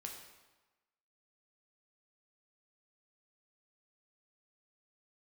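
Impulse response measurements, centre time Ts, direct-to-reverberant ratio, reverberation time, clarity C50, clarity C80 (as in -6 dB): 39 ms, 1.0 dB, 1.2 s, 5.0 dB, 7.0 dB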